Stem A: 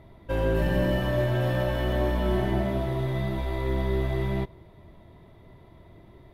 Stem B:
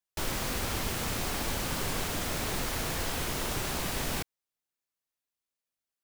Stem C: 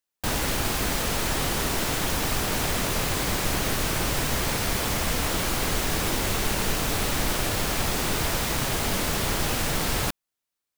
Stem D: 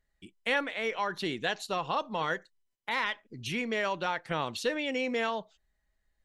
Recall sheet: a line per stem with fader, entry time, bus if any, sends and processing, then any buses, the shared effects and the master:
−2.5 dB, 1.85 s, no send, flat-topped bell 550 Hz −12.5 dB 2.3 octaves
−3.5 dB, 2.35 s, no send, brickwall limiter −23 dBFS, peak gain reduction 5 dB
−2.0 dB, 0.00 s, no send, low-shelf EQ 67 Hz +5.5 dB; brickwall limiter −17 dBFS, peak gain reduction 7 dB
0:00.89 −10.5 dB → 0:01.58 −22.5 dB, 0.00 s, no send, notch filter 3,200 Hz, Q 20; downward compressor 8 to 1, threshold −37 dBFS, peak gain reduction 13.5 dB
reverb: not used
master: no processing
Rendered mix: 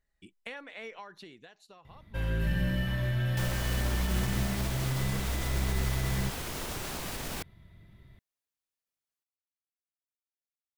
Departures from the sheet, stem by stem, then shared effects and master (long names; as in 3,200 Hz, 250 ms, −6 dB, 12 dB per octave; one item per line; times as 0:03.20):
stem B: entry 2.35 s → 3.20 s
stem C: muted
stem D −10.5 dB → −2.5 dB